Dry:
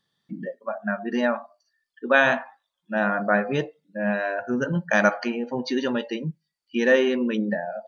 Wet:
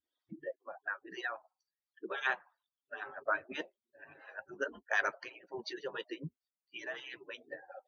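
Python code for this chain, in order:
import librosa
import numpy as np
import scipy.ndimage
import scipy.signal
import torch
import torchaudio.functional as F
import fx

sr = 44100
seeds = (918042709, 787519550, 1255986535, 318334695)

y = fx.hpss_only(x, sr, part='percussive')
y = fx.high_shelf(y, sr, hz=5600.0, db=-10.5)
y = fx.harmonic_tremolo(y, sr, hz=2.9, depth_pct=70, crossover_hz=400.0)
y = fx.low_shelf(y, sr, hz=61.0, db=-7.0)
y = F.gain(torch.from_numpy(y), -5.0).numpy()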